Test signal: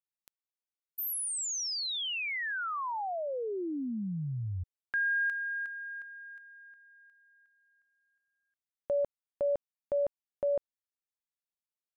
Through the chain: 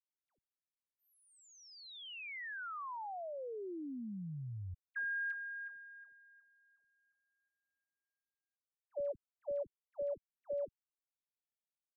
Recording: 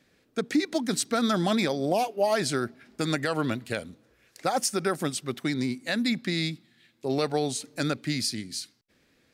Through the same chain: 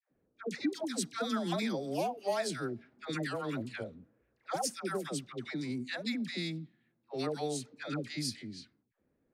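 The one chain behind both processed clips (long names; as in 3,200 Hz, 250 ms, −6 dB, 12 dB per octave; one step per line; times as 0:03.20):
all-pass dispersion lows, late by 109 ms, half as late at 790 Hz
low-pass that shuts in the quiet parts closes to 820 Hz, open at −23.5 dBFS
level −8.5 dB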